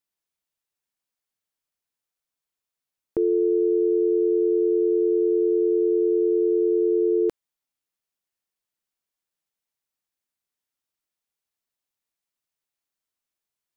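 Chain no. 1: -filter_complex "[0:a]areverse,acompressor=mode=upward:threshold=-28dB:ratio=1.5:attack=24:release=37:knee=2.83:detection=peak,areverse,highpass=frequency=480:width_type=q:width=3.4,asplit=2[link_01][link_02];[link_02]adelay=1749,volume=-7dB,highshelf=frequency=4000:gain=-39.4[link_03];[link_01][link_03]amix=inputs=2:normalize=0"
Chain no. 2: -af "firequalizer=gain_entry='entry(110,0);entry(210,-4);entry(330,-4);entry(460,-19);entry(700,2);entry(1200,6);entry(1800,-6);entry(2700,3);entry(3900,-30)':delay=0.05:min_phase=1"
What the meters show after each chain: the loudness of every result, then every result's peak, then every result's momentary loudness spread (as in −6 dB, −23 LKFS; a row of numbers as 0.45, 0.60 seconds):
−17.0, −30.5 LKFS; −6.5, −18.0 dBFS; 8, 2 LU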